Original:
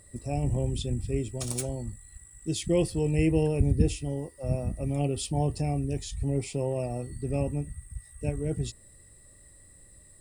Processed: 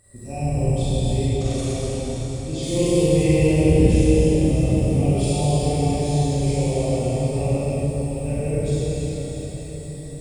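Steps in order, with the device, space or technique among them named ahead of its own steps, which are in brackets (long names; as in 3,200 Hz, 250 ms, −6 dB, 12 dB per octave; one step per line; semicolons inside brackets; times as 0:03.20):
cathedral (convolution reverb RT60 4.9 s, pre-delay 22 ms, DRR −7.5 dB)
0:01.27–0:02.63: low-pass filter 6,200 Hz 12 dB per octave
feedback delay with all-pass diffusion 751 ms, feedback 49%, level −14.5 dB
four-comb reverb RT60 1.1 s, combs from 32 ms, DRR −3.5 dB
level −4.5 dB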